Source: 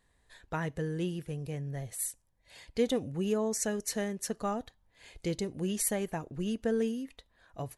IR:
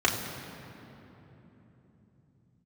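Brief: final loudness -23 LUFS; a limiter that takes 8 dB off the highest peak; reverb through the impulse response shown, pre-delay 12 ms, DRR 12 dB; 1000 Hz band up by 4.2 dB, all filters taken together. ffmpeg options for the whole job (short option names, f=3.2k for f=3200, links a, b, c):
-filter_complex "[0:a]equalizer=f=1k:t=o:g=5.5,alimiter=limit=-24dB:level=0:latency=1,asplit=2[a][b];[1:a]atrim=start_sample=2205,adelay=12[c];[b][c]afir=irnorm=-1:irlink=0,volume=-26dB[d];[a][d]amix=inputs=2:normalize=0,volume=12dB"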